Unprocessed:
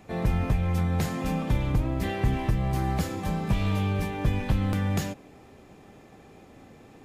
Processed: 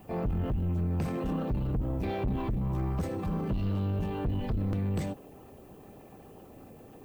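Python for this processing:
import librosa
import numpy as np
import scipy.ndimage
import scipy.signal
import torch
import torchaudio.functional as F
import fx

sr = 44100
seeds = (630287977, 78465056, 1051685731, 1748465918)

y = fx.envelope_sharpen(x, sr, power=1.5)
y = fx.dmg_noise_colour(y, sr, seeds[0], colour='violet', level_db=-63.0)
y = 10.0 ** (-25.5 / 20.0) * np.tanh(y / 10.0 ** (-25.5 / 20.0))
y = fx.formant_shift(y, sr, semitones=3)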